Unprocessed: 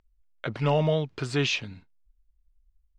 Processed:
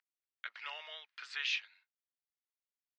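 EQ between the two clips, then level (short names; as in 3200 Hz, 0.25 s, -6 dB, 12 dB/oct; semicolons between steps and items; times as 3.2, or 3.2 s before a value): ladder high-pass 1600 Hz, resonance 45%; air absorption 160 m; bell 2200 Hz -7 dB 1.2 oct; +6.5 dB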